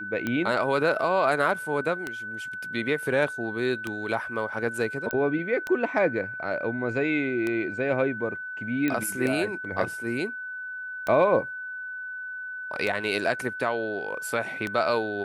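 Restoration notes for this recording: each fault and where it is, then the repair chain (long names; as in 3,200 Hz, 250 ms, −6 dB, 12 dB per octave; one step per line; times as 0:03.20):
scratch tick 33 1/3 rpm −15 dBFS
whistle 1,500 Hz −33 dBFS
0:05.11: click −15 dBFS
0:08.88: click −14 dBFS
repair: click removal
notch filter 1,500 Hz, Q 30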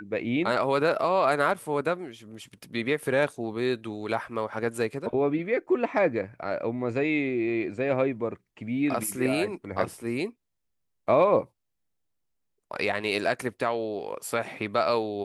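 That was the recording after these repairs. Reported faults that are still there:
none of them is left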